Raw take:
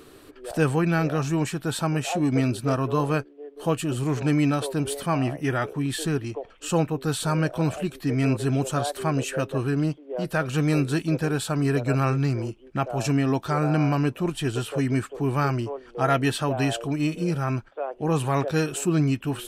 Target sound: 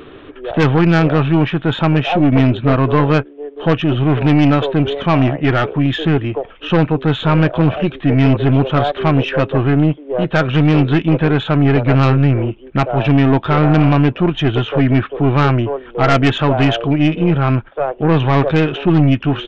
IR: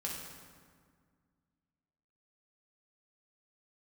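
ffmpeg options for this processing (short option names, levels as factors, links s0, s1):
-af "aresample=8000,aresample=44100,aeval=exprs='0.398*(cos(1*acos(clip(val(0)/0.398,-1,1)))-cos(1*PI/2))+0.112*(cos(5*acos(clip(val(0)/0.398,-1,1)))-cos(5*PI/2))+0.0631*(cos(6*acos(clip(val(0)/0.398,-1,1)))-cos(6*PI/2))':c=same,volume=1.68"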